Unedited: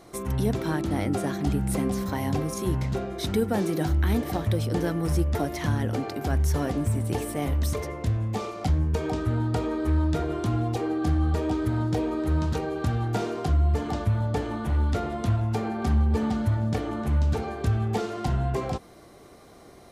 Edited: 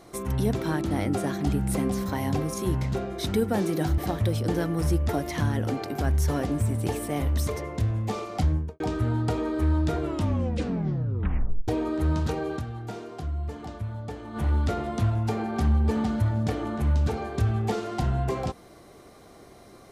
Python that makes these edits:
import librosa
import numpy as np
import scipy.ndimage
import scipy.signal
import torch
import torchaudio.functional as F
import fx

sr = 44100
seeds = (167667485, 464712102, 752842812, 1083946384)

y = fx.studio_fade_out(x, sr, start_s=8.75, length_s=0.31)
y = fx.edit(y, sr, fx.cut(start_s=3.98, length_s=0.26),
    fx.tape_stop(start_s=10.27, length_s=1.67),
    fx.fade_down_up(start_s=12.82, length_s=1.81, db=-9.0, fade_s=0.27, curve='exp'), tone=tone)